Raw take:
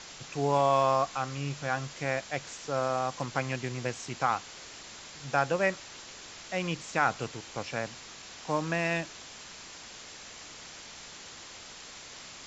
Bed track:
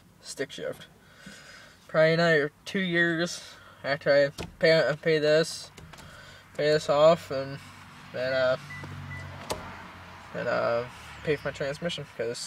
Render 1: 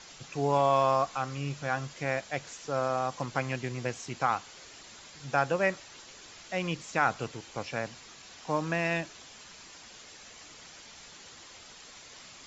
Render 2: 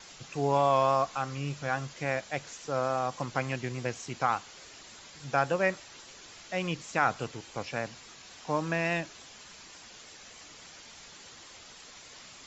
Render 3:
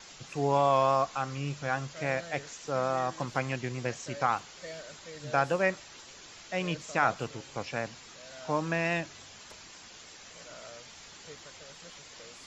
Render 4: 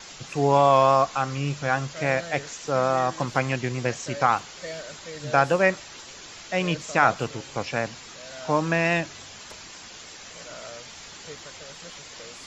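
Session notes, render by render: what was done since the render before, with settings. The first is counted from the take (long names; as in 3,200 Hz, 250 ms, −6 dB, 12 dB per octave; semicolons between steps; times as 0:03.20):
broadband denoise 6 dB, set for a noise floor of −47 dBFS
pitch vibrato 3.5 Hz 31 cents
mix in bed track −22.5 dB
level +7 dB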